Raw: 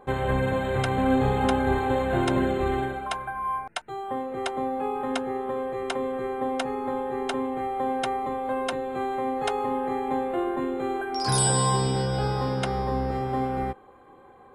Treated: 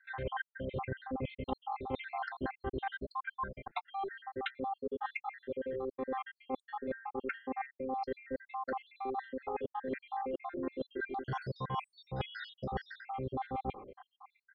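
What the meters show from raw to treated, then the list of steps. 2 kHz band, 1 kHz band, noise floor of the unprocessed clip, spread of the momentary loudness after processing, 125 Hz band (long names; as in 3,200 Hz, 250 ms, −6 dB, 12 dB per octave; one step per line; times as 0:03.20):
−8.5 dB, −11.5 dB, −51 dBFS, 3 LU, −16.0 dB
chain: time-frequency cells dropped at random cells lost 74%
inverse Chebyshev low-pass filter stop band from 6,900 Hz, stop band 40 dB
reversed playback
downward compressor 12 to 1, threshold −38 dBFS, peak gain reduction 19 dB
reversed playback
level +4 dB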